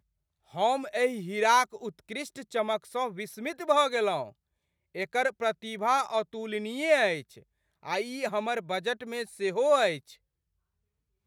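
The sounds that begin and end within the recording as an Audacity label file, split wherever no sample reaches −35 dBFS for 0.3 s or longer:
0.560000	4.270000	sound
4.950000	7.200000	sound
7.850000	9.980000	sound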